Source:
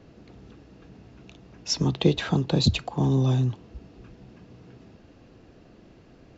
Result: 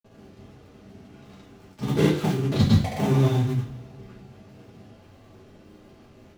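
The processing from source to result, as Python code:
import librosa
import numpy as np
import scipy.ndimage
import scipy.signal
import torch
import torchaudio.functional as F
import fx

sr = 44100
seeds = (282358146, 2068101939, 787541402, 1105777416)

y = fx.dead_time(x, sr, dead_ms=0.28)
y = fx.granulator(y, sr, seeds[0], grain_ms=100.0, per_s=20.0, spray_ms=100.0, spread_st=0)
y = fx.rev_double_slope(y, sr, seeds[1], early_s=0.36, late_s=1.8, knee_db=-20, drr_db=-6.5)
y = y * 10.0 ** (-3.5 / 20.0)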